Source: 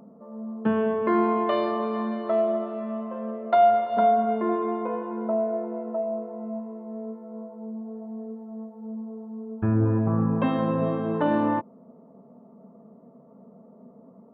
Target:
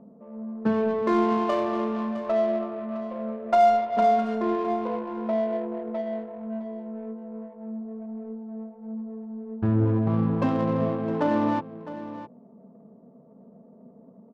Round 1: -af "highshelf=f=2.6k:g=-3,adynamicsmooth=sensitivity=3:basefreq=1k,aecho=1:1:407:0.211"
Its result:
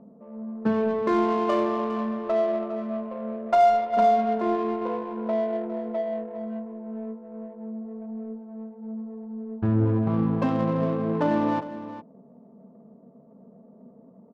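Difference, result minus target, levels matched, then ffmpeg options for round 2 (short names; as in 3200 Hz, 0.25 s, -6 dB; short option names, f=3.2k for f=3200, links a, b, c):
echo 0.252 s early
-af "highshelf=f=2.6k:g=-3,adynamicsmooth=sensitivity=3:basefreq=1k,aecho=1:1:659:0.211"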